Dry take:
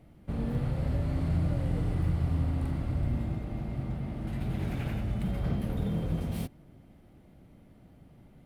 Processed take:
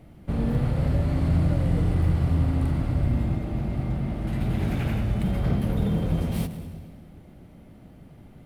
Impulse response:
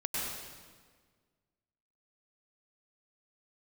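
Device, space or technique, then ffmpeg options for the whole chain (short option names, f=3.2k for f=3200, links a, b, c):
saturated reverb return: -filter_complex "[0:a]asplit=2[a][b];[1:a]atrim=start_sample=2205[c];[b][c]afir=irnorm=-1:irlink=0,asoftclip=type=tanh:threshold=-22.5dB,volume=-11.5dB[d];[a][d]amix=inputs=2:normalize=0,volume=5dB"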